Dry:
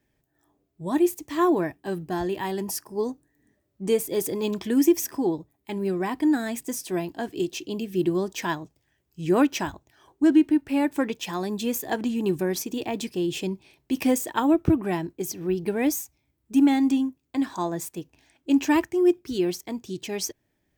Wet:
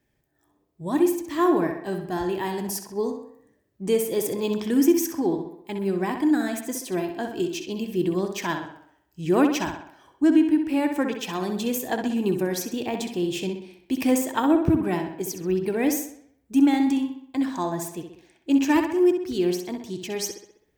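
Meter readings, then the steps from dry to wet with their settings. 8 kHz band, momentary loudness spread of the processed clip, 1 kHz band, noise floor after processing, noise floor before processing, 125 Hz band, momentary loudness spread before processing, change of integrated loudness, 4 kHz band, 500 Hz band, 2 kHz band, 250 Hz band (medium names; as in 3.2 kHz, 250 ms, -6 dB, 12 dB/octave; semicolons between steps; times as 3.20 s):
+0.5 dB, 12 LU, +1.0 dB, -69 dBFS, -74 dBFS, +0.5 dB, 12 LU, +1.0 dB, +0.5 dB, +1.0 dB, +1.0 dB, +1.0 dB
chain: tape echo 64 ms, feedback 55%, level -6 dB, low-pass 4.8 kHz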